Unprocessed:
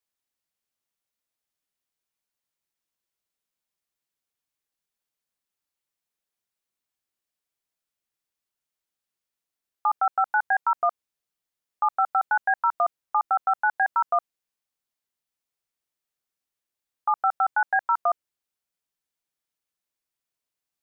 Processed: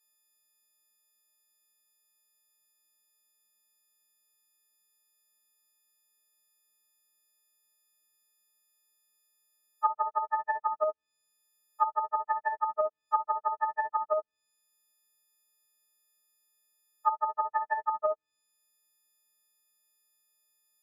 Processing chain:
every partial snapped to a pitch grid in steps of 6 semitones
treble cut that deepens with the level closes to 520 Hz, closed at −18.5 dBFS

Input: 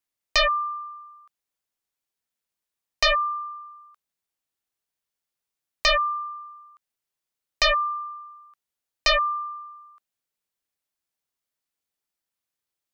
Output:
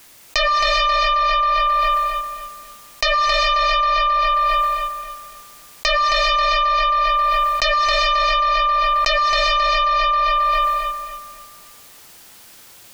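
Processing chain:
feedback echo with a low-pass in the loop 268 ms, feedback 35%, low-pass 4,800 Hz, level −6 dB
reverb whose tail is shaped and stops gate 450 ms rising, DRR 3 dB
envelope flattener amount 100%

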